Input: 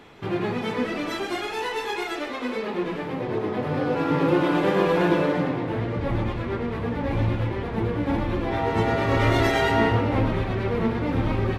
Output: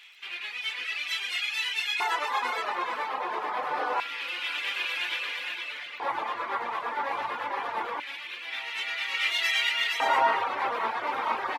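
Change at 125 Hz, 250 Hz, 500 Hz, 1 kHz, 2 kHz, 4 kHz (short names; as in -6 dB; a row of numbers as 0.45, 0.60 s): under -35 dB, -25.0 dB, -13.5 dB, 0.0 dB, +1.5 dB, +5.5 dB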